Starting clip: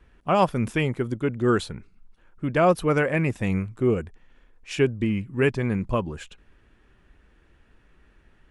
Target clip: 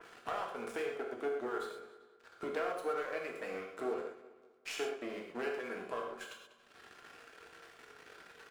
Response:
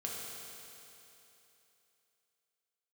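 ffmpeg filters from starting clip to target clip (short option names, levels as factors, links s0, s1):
-filter_complex "[0:a]aeval=exprs='if(lt(val(0),0),0.251*val(0),val(0))':c=same,highpass=f=350:w=0.5412,highpass=f=350:w=1.3066,equalizer=f=1400:t=o:w=0.28:g=6.5,agate=range=0.251:threshold=0.00224:ratio=16:detection=peak,acompressor=mode=upward:threshold=0.02:ratio=2.5,alimiter=limit=0.119:level=0:latency=1,acompressor=threshold=0.00708:ratio=3,aeval=exprs='sgn(val(0))*max(abs(val(0))-0.0015,0)':c=same,asplit=2[s0][s1];[s1]adelay=195,lowpass=f=4400:p=1,volume=0.158,asplit=2[s2][s3];[s3]adelay=195,lowpass=f=4400:p=1,volume=0.46,asplit=2[s4][s5];[s5]adelay=195,lowpass=f=4400:p=1,volume=0.46,asplit=2[s6][s7];[s7]adelay=195,lowpass=f=4400:p=1,volume=0.46[s8];[s0][s2][s4][s6][s8]amix=inputs=5:normalize=0[s9];[1:a]atrim=start_sample=2205,atrim=end_sample=6174[s10];[s9][s10]afir=irnorm=-1:irlink=0,adynamicequalizer=threshold=0.00126:dfrequency=2200:dqfactor=0.7:tfrequency=2200:tqfactor=0.7:attack=5:release=100:ratio=0.375:range=3.5:mode=cutabove:tftype=highshelf,volume=1.88"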